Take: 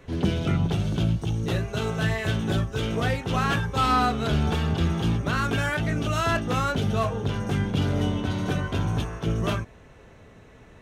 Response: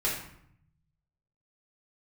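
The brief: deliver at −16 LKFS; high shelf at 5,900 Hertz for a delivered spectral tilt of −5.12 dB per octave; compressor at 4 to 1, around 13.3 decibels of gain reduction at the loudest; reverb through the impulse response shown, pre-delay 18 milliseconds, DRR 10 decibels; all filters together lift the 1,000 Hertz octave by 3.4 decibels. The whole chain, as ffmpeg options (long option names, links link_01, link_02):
-filter_complex "[0:a]equalizer=frequency=1000:width_type=o:gain=4.5,highshelf=frequency=5900:gain=7,acompressor=threshold=-32dB:ratio=4,asplit=2[link_01][link_02];[1:a]atrim=start_sample=2205,adelay=18[link_03];[link_02][link_03]afir=irnorm=-1:irlink=0,volume=-18.5dB[link_04];[link_01][link_04]amix=inputs=2:normalize=0,volume=17.5dB"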